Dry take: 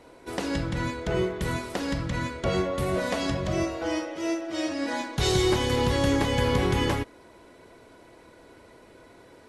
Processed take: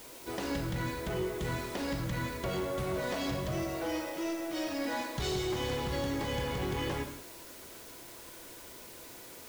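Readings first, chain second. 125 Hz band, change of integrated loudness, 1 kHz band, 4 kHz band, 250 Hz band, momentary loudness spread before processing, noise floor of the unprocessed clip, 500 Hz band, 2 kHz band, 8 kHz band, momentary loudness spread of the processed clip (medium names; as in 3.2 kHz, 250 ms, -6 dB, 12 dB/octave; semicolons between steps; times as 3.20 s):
-8.0 dB, -7.5 dB, -7.0 dB, -7.5 dB, -7.5 dB, 7 LU, -53 dBFS, -7.5 dB, -7.0 dB, -6.0 dB, 13 LU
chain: low-pass 8.6 kHz; compression, threshold -25 dBFS, peak gain reduction 6.5 dB; word length cut 8-bit, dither triangular; flange 1.7 Hz, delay 4.6 ms, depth 1.9 ms, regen -80%; saturation -29.5 dBFS, distortion -15 dB; gated-style reverb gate 210 ms flat, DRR 7 dB; trim +1.5 dB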